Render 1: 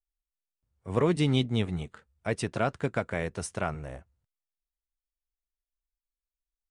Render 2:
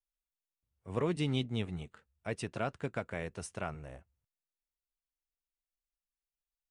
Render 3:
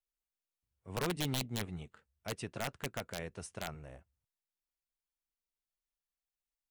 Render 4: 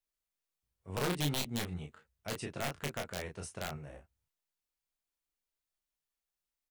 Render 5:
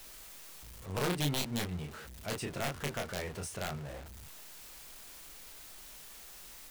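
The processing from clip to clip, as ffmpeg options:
ffmpeg -i in.wav -af "equalizer=frequency=2700:width=6.2:gain=4,volume=-7.5dB" out.wav
ffmpeg -i in.wav -af "aeval=exprs='(mod(16.8*val(0)+1,2)-1)/16.8':channel_layout=same,volume=-3dB" out.wav
ffmpeg -i in.wav -af "aecho=1:1:21|34:0.501|0.562" out.wav
ffmpeg -i in.wav -af "aeval=exprs='val(0)+0.5*0.0075*sgn(val(0))':channel_layout=same" out.wav

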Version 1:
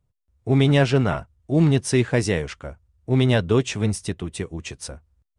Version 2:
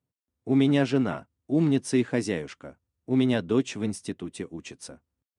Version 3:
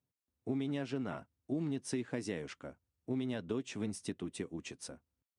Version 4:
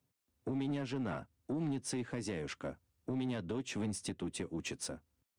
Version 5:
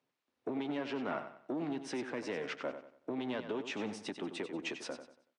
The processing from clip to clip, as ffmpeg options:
ffmpeg -i in.wav -af "highpass=150,equalizer=frequency=270:width=2.2:gain=8.5,volume=-7.5dB" out.wav
ffmpeg -i in.wav -af "acompressor=threshold=-28dB:ratio=10,volume=-4.5dB" out.wav
ffmpeg -i in.wav -filter_complex "[0:a]acrossover=split=120[link_01][link_02];[link_02]alimiter=level_in=10dB:limit=-24dB:level=0:latency=1:release=356,volume=-10dB[link_03];[link_01][link_03]amix=inputs=2:normalize=0,asoftclip=type=tanh:threshold=-37.5dB,volume=7.5dB" out.wav
ffmpeg -i in.wav -filter_complex "[0:a]highpass=350,lowpass=3500,asplit=2[link_01][link_02];[link_02]aecho=0:1:94|188|282|376:0.316|0.111|0.0387|0.0136[link_03];[link_01][link_03]amix=inputs=2:normalize=0,volume=4.5dB" out.wav

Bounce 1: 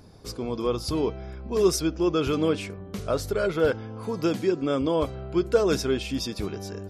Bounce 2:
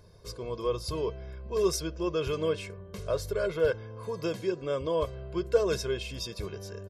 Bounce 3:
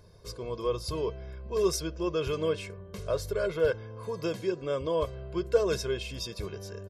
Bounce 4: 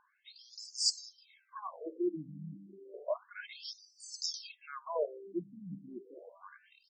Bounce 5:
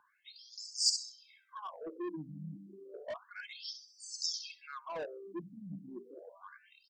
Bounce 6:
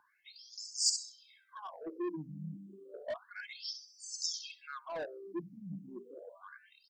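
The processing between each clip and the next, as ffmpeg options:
ffmpeg -i in.wav -af "aecho=1:1:1.9:0.74,volume=-7dB" out.wav
ffmpeg -i in.wav -af anull out.wav
ffmpeg -i in.wav -af "aexciter=amount=5.5:drive=6.8:freq=4700,aeval=exprs='(tanh(3.98*val(0)+0.2)-tanh(0.2))/3.98':channel_layout=same,afftfilt=real='re*between(b*sr/1024,200*pow(6200/200,0.5+0.5*sin(2*PI*0.31*pts/sr))/1.41,200*pow(6200/200,0.5+0.5*sin(2*PI*0.31*pts/sr))*1.41)':imag='im*between(b*sr/1024,200*pow(6200/200,0.5+0.5*sin(2*PI*0.31*pts/sr))/1.41,200*pow(6200/200,0.5+0.5*sin(2*PI*0.31*pts/sr))*1.41)':win_size=1024:overlap=0.75" out.wav
ffmpeg -i in.wav -filter_complex "[0:a]bandreject=frequency=60:width_type=h:width=6,bandreject=frequency=120:width_type=h:width=6,bandreject=frequency=180:width_type=h:width=6,bandreject=frequency=240:width_type=h:width=6,acrossover=split=160|3700[link_01][link_02][link_03];[link_02]asoftclip=type=tanh:threshold=-37.5dB[link_04];[link_03]aecho=1:1:66|132|198:0.501|0.12|0.0289[link_05];[link_01][link_04][link_05]amix=inputs=3:normalize=0,volume=1dB" out.wav
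ffmpeg -i in.wav -af "afftfilt=real='re*pow(10,6/40*sin(2*PI*(0.77*log(max(b,1)*sr/1024/100)/log(2)-(0.58)*(pts-256)/sr)))':imag='im*pow(10,6/40*sin(2*PI*(0.77*log(max(b,1)*sr/1024/100)/log(2)-(0.58)*(pts-256)/sr)))':win_size=1024:overlap=0.75" out.wav

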